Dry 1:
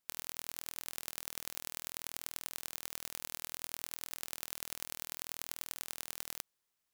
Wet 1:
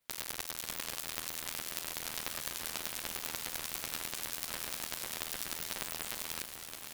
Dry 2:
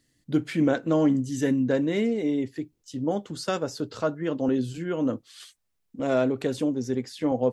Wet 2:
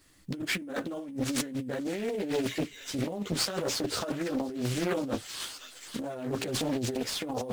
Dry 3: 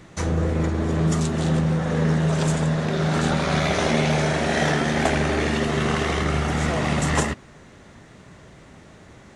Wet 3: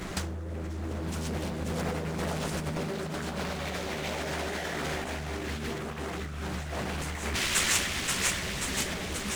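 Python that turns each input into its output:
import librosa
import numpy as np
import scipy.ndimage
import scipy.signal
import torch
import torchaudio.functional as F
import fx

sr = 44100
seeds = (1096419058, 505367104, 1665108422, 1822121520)

p1 = x + fx.echo_wet_highpass(x, sr, ms=531, feedback_pct=65, hz=2900.0, wet_db=-7, dry=0)
p2 = fx.chorus_voices(p1, sr, voices=6, hz=1.4, base_ms=13, depth_ms=3.0, mix_pct=55)
p3 = fx.high_shelf(p2, sr, hz=4500.0, db=11.0)
p4 = fx.sample_hold(p3, sr, seeds[0], rate_hz=9600.0, jitter_pct=0)
p5 = p3 + F.gain(torch.from_numpy(p4), -4.5).numpy()
p6 = fx.over_compress(p5, sr, threshold_db=-31.0, ratio=-1.0)
p7 = fx.doppler_dist(p6, sr, depth_ms=0.74)
y = F.gain(torch.from_numpy(p7), -1.5).numpy()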